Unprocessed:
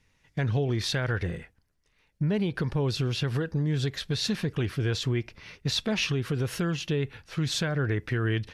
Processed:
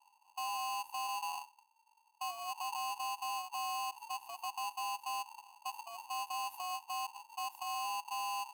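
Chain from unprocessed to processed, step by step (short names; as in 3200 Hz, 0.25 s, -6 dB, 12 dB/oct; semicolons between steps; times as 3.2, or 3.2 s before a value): inverse Chebyshev band-stop 500–4900 Hz, stop band 70 dB; limiter -36 dBFS, peak gain reduction 12 dB; polarity switched at an audio rate 910 Hz; gain +1.5 dB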